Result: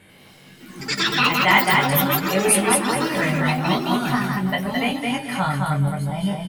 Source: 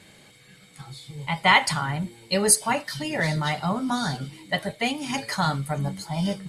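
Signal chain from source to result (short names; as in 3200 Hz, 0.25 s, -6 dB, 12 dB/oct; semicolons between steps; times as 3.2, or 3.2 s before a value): band shelf 5500 Hz -11.5 dB 1.2 oct; doubler 21 ms -3.5 dB; feedback echo 0.216 s, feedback 23%, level -3 dB; echoes that change speed 91 ms, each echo +5 st, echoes 3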